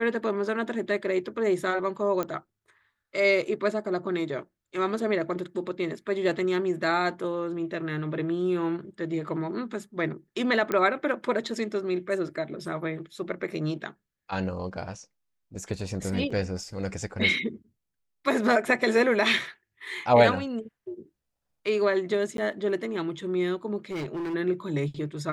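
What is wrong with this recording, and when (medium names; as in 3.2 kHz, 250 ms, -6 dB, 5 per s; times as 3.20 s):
2.23 s: pop -16 dBFS
10.72 s: pop -14 dBFS
16.30–16.31 s: dropout 5.3 ms
22.37–22.38 s: dropout 12 ms
23.90–24.35 s: clipped -29 dBFS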